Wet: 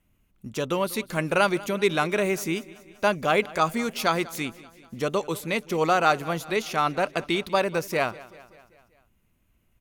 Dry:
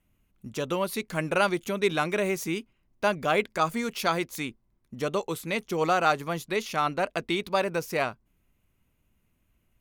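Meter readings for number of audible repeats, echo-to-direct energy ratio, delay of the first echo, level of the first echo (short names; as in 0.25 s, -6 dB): 4, -18.0 dB, 0.193 s, -20.0 dB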